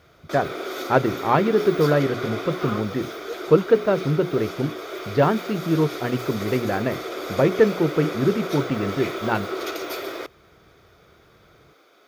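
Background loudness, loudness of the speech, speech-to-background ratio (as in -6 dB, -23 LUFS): -31.0 LUFS, -23.0 LUFS, 8.0 dB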